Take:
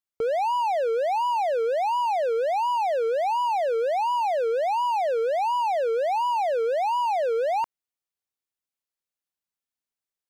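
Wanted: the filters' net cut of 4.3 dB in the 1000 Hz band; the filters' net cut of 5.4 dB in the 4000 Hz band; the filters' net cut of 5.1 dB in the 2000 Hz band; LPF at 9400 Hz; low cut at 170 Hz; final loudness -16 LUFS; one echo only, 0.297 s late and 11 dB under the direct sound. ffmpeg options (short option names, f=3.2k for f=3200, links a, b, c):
-af "highpass=170,lowpass=9.4k,equalizer=f=1k:t=o:g=-4.5,equalizer=f=2k:t=o:g=-3.5,equalizer=f=4k:t=o:g=-6,aecho=1:1:297:0.282,volume=11dB"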